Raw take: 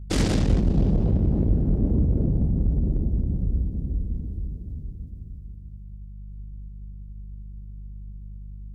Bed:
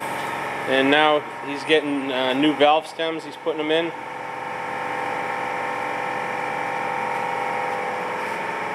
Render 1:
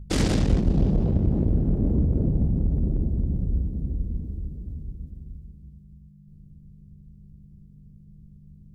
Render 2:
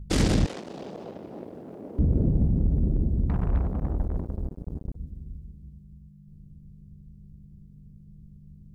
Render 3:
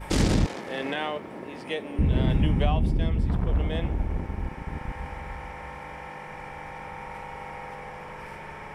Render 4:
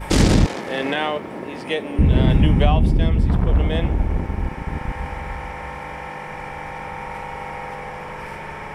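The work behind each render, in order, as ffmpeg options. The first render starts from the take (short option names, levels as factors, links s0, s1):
-af "bandreject=f=50:t=h:w=4,bandreject=f=100:t=h:w=4"
-filter_complex "[0:a]asettb=1/sr,asplit=3[s0][s1][s2];[s0]atrim=end=0.464[s3];[s1]atrim=start=0.46:end=1.99,asetpts=PTS-STARTPTS,afade=t=in:d=0.004:c=qsin,afade=t=out:st=1.526:d=0.004:c=qsin,highpass=600[s4];[s2]atrim=start=1.986[s5];[s3][s4]acrossfade=d=0.004:c1=hsin:c2=qsin[s6];[s6][s5]acrossfade=d=0.004:c1=qsin:c2=hsin,asettb=1/sr,asplit=3[s7][s8][s9];[s7]atrim=end=3.294[s10];[s8]atrim=start=3.29:end=4.96,asetpts=PTS-STARTPTS,afade=t=in:d=0.004:c=qsin,afade=t=out:st=1.666:d=0.004:c=qsin,acrusher=bits=4:mix=0:aa=0.5[s11];[s9]atrim=start=4.956[s12];[s10][s11]acrossfade=d=0.004:c1=hsin:c2=qsin[s13];[s13][s12]acrossfade=d=0.004:c1=qsin:c2=hsin"
-filter_complex "[1:a]volume=0.2[s0];[0:a][s0]amix=inputs=2:normalize=0"
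-af "volume=2.37"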